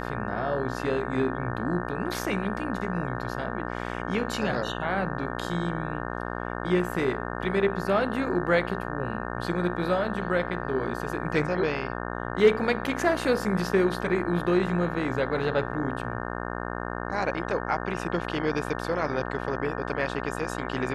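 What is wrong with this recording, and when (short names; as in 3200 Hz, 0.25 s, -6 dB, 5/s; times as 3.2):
buzz 60 Hz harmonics 30 -33 dBFS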